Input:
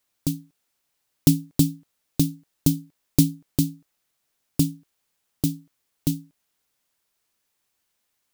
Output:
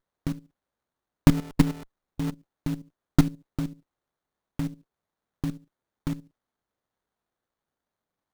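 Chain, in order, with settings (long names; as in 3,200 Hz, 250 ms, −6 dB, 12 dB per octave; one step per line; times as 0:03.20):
0:01.29–0:02.31: converter with a step at zero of −27 dBFS
output level in coarse steps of 14 dB
windowed peak hold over 17 samples
level +1.5 dB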